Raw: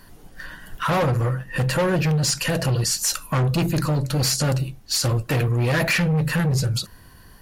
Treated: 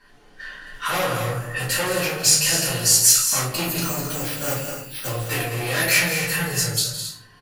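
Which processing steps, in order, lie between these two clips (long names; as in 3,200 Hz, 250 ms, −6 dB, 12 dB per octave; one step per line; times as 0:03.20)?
low-pass that shuts in the quiet parts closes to 2,700 Hz, open at −20 dBFS
0:03.82–0:05.07: bad sample-rate conversion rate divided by 6×, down filtered, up hold
RIAA equalisation recording
on a send: multi-tap delay 164/210/268 ms −12.5/−9.5/−11.5 dB
on the sum: rectangular room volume 51 cubic metres, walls mixed, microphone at 2.1 metres
level −11 dB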